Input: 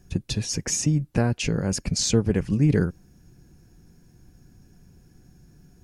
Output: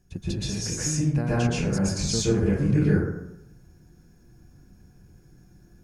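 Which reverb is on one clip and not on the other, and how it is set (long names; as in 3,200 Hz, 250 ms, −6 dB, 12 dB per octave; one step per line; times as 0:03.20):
dense smooth reverb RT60 0.83 s, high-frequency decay 0.4×, pre-delay 110 ms, DRR −8.5 dB
level −9 dB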